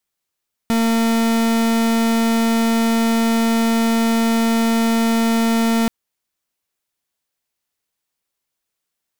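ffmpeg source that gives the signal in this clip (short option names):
-f lavfi -i "aevalsrc='0.15*(2*lt(mod(228*t,1),0.42)-1)':d=5.18:s=44100"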